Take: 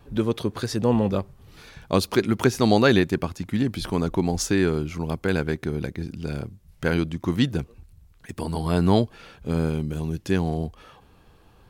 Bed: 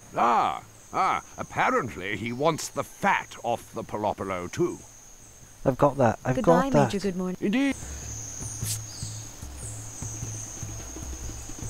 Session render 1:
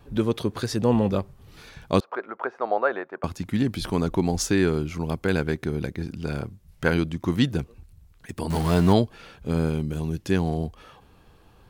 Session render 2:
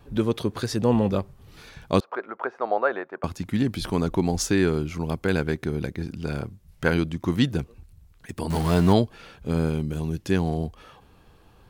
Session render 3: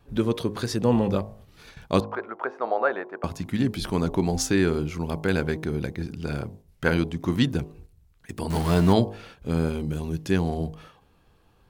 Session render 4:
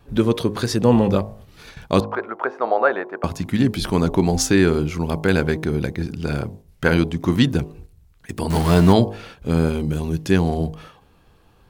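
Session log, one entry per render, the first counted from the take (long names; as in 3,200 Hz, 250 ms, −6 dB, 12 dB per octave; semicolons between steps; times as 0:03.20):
0:02.00–0:03.24: Chebyshev band-pass filter 570–1,400 Hz; 0:05.95–0:06.90: dynamic equaliser 1,100 Hz, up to +5 dB, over −46 dBFS, Q 0.82; 0:08.50–0:08.93: converter with a step at zero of −27 dBFS
no processing that can be heard
hum removal 52.29 Hz, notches 21; noise gate −46 dBFS, range −6 dB
level +6 dB; brickwall limiter −3 dBFS, peak gain reduction 2.5 dB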